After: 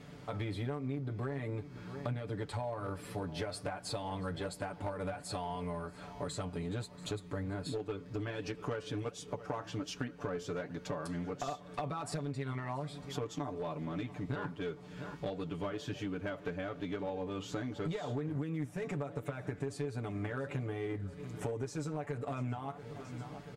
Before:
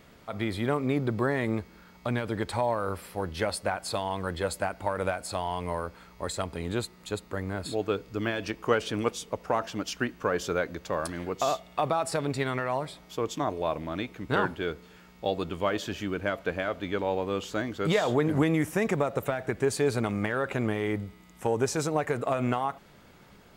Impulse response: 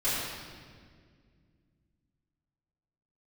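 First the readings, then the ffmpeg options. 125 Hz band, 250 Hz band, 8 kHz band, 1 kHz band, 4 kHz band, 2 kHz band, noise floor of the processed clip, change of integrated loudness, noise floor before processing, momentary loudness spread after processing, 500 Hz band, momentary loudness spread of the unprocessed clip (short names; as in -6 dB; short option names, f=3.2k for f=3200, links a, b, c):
-4.5 dB, -8.5 dB, -10.5 dB, -11.5 dB, -9.5 dB, -12.5 dB, -52 dBFS, -9.5 dB, -54 dBFS, 3 LU, -10.5 dB, 8 LU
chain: -af "highpass=57,lowshelf=f=260:g=10,flanger=delay=4:depth=7.6:regen=77:speed=1.3:shape=sinusoidal,aecho=1:1:6.9:0.93,aecho=1:1:684|1368|2052|2736:0.0708|0.0382|0.0206|0.0111,acompressor=threshold=-37dB:ratio=6,aeval=exprs='clip(val(0),-1,0.0168)':c=same,lowpass=10k,volume=1.5dB"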